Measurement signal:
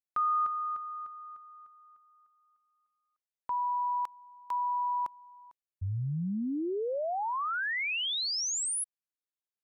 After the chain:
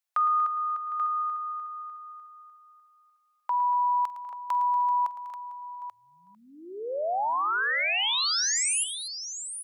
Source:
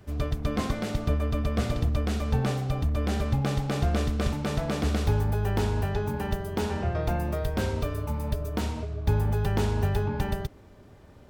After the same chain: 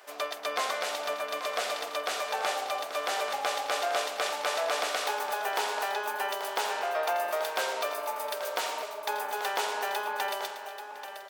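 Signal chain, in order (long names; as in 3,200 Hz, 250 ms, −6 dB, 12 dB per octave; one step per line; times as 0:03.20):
high-pass filter 610 Hz 24 dB per octave
in parallel at −0.5 dB: downward compressor, threshold −40 dBFS
on the sum: multi-tap delay 47/110/238/757/835 ms −19.5/−13/−14.5/−18.5/−10.5 dB
level +2.5 dB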